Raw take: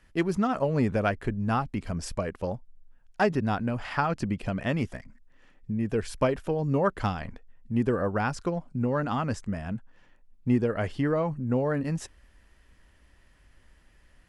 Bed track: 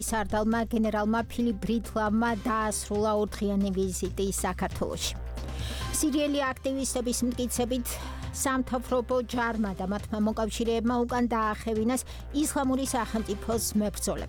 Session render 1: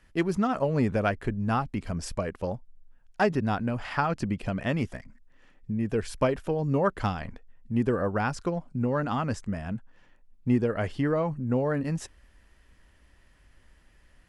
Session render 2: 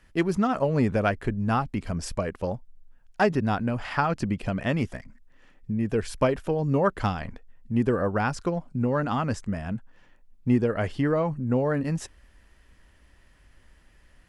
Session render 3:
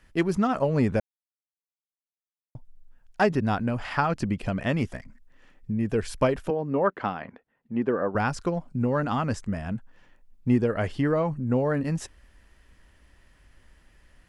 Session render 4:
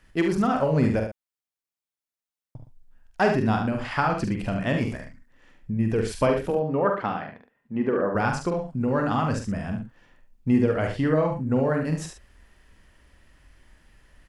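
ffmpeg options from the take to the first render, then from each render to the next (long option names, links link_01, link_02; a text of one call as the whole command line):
ffmpeg -i in.wav -af anull out.wav
ffmpeg -i in.wav -af "volume=2dB" out.wav
ffmpeg -i in.wav -filter_complex "[0:a]asettb=1/sr,asplit=3[link_01][link_02][link_03];[link_01]atrim=end=6.504[link_04];[link_02]atrim=start=6.5:end=8.15,asetpts=PTS-STARTPTS,afade=type=in:duration=0.004:curve=qsin,afade=type=out:start_time=1.646:duration=0.004:curve=qsin,highpass=230,lowpass=2400[link_05];[link_03]atrim=start=8.146[link_06];[link_04][link_05]acrossfade=duration=0.004:curve1=hsin:curve2=qsin[link_07];[link_07][link_06]acrossfade=duration=0.004:curve1=qsin:curve2=hsin,asplit=3[link_08][link_09][link_10];[link_08]atrim=end=1,asetpts=PTS-STARTPTS,afade=type=out:start_time=0.996:duration=0.004:curve=hsin[link_11];[link_09]atrim=start=1:end=2.55,asetpts=PTS-STARTPTS,volume=0[link_12];[link_10]atrim=start=2.55,asetpts=PTS-STARTPTS,afade=type=in:duration=0.004:curve=hsin[link_13];[link_11][link_12][link_13]concat=n=3:v=0:a=1" out.wav
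ffmpeg -i in.wav -filter_complex "[0:a]asplit=2[link_01][link_02];[link_02]adelay=45,volume=-6dB[link_03];[link_01][link_03]amix=inputs=2:normalize=0,asplit=2[link_04][link_05];[link_05]aecho=0:1:72:0.447[link_06];[link_04][link_06]amix=inputs=2:normalize=0" out.wav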